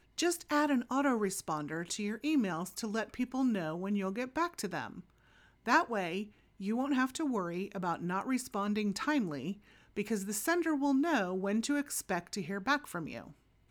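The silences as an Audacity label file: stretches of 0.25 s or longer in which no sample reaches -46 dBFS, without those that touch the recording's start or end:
5.000000	5.660000	silence
6.270000	6.600000	silence
9.530000	9.970000	silence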